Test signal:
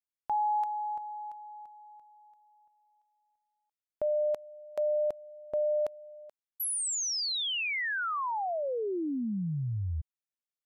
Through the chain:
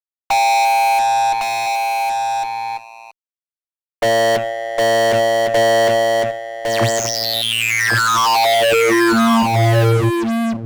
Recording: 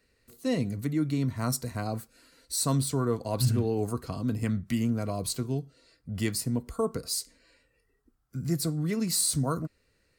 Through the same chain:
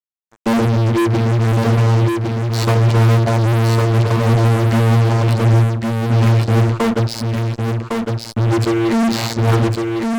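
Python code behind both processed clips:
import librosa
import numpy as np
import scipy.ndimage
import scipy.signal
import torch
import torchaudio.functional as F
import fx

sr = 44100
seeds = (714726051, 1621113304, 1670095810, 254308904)

p1 = scipy.ndimage.median_filter(x, 5, mode='constant')
p2 = fx.dynamic_eq(p1, sr, hz=680.0, q=6.5, threshold_db=-45.0, ratio=4.0, max_db=5)
p3 = fx.vocoder(p2, sr, bands=32, carrier='saw', carrier_hz=114.0)
p4 = fx.fuzz(p3, sr, gain_db=47.0, gate_db=-53.0)
y = p4 + fx.echo_single(p4, sr, ms=1107, db=-4.0, dry=0)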